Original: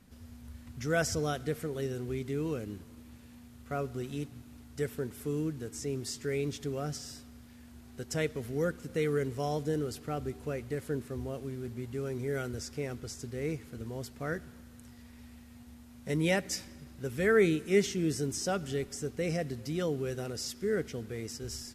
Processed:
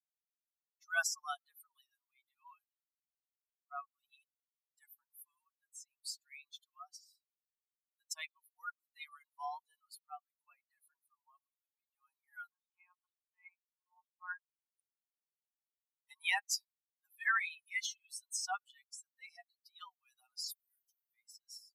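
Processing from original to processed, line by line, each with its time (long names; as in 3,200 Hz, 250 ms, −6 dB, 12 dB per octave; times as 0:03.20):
0:01.07–0:01.28: time-frequency box erased 2,200–4,600 Hz
0:12.52–0:14.70: one-pitch LPC vocoder at 8 kHz 180 Hz
0:20.51–0:21.14: first difference
whole clip: spectral dynamics exaggerated over time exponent 3; Butterworth high-pass 750 Hz 96 dB per octave; level +4.5 dB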